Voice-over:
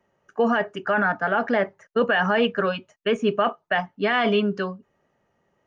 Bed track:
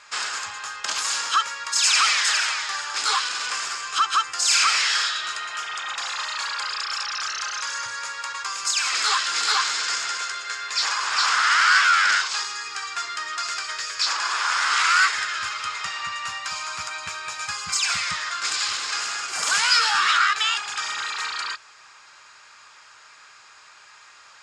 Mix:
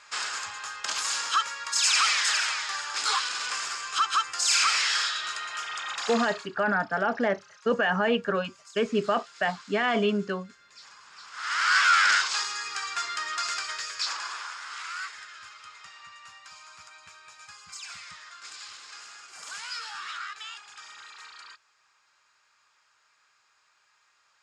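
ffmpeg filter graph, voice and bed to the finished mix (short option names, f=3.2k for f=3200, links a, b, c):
-filter_complex "[0:a]adelay=5700,volume=-4dB[a];[1:a]volume=20.5dB,afade=t=out:st=6.14:d=0.34:silence=0.0749894,afade=t=in:st=11.32:d=0.61:silence=0.0595662,afade=t=out:st=13.47:d=1.1:silence=0.158489[b];[a][b]amix=inputs=2:normalize=0"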